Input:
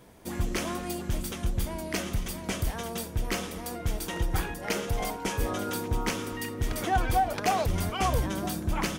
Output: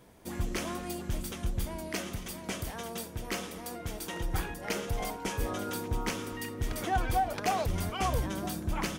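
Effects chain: 1.9–4.24 low shelf 77 Hz -11 dB; gain -3.5 dB

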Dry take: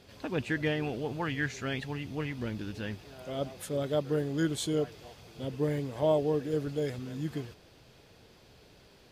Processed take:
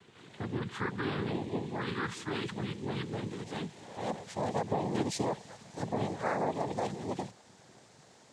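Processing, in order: speed glide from 58% -> 161%; limiter -23 dBFS, peak gain reduction 7.5 dB; noise vocoder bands 6

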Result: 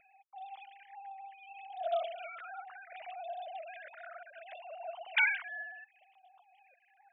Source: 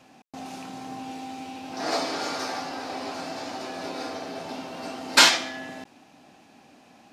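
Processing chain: sine-wave speech; phaser stages 4, 0.67 Hz, lowest notch 530–1900 Hz; 2.03–2.93 ten-band EQ 250 Hz -4 dB, 500 Hz +11 dB, 1000 Hz -12 dB; gain -6.5 dB

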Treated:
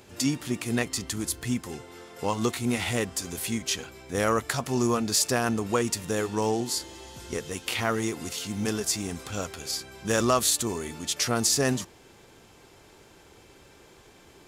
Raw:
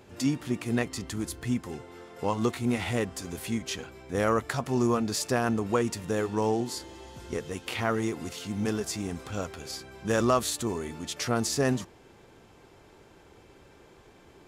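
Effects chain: high shelf 2900 Hz +9.5 dB

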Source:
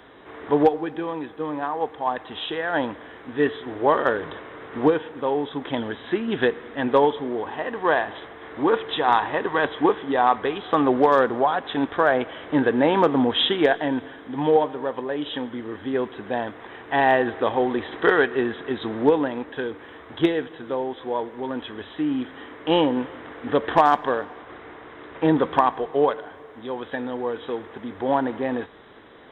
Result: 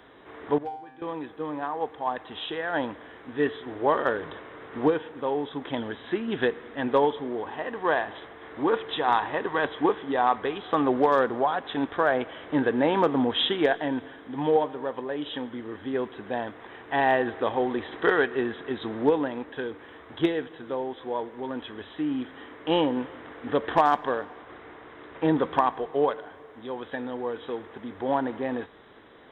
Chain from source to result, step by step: 0.58–1.02 resonator 130 Hz, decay 0.68 s, harmonics all, mix 90%; gain -4 dB

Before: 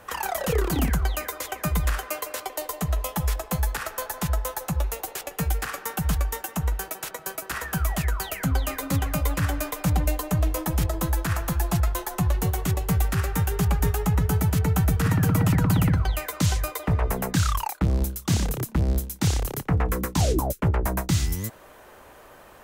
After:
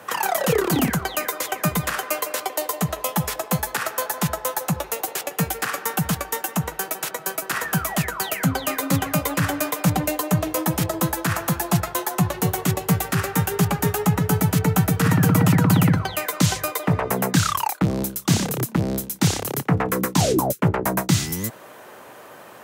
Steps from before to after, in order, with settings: HPF 120 Hz 24 dB/oct; gain +6 dB

